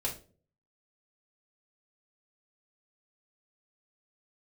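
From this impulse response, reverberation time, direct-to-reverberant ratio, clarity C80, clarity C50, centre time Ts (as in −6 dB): non-exponential decay, −4.0 dB, 16.0 dB, 10.5 dB, 19 ms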